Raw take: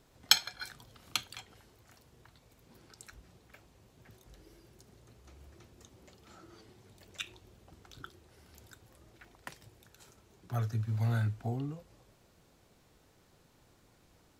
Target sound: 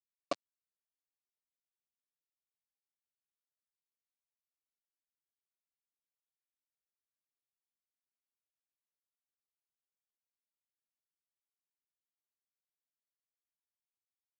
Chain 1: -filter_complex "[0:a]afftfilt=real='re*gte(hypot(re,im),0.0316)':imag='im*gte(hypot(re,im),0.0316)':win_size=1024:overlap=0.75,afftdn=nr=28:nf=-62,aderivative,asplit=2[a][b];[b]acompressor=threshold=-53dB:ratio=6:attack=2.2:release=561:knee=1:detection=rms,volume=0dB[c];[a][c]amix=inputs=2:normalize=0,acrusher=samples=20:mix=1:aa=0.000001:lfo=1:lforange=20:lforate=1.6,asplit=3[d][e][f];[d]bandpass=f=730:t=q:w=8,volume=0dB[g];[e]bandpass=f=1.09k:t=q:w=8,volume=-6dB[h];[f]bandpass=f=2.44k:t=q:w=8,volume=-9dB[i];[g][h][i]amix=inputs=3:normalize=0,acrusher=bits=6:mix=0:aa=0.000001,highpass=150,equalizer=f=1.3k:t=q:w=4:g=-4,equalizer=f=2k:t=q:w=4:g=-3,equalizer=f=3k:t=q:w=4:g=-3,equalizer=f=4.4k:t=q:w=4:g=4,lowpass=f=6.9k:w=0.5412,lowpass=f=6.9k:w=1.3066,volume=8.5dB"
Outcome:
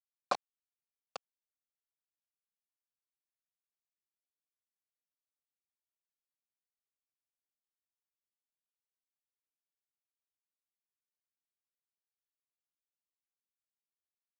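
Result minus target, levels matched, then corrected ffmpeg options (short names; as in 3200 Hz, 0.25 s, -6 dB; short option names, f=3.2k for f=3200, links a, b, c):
decimation with a swept rate: distortion -39 dB
-filter_complex "[0:a]afftfilt=real='re*gte(hypot(re,im),0.0316)':imag='im*gte(hypot(re,im),0.0316)':win_size=1024:overlap=0.75,afftdn=nr=28:nf=-62,aderivative,asplit=2[a][b];[b]acompressor=threshold=-53dB:ratio=6:attack=2.2:release=561:knee=1:detection=rms,volume=0dB[c];[a][c]amix=inputs=2:normalize=0,acrusher=samples=68:mix=1:aa=0.000001:lfo=1:lforange=68:lforate=1.6,asplit=3[d][e][f];[d]bandpass=f=730:t=q:w=8,volume=0dB[g];[e]bandpass=f=1.09k:t=q:w=8,volume=-6dB[h];[f]bandpass=f=2.44k:t=q:w=8,volume=-9dB[i];[g][h][i]amix=inputs=3:normalize=0,acrusher=bits=6:mix=0:aa=0.000001,highpass=150,equalizer=f=1.3k:t=q:w=4:g=-4,equalizer=f=2k:t=q:w=4:g=-3,equalizer=f=3k:t=q:w=4:g=-3,equalizer=f=4.4k:t=q:w=4:g=4,lowpass=f=6.9k:w=0.5412,lowpass=f=6.9k:w=1.3066,volume=8.5dB"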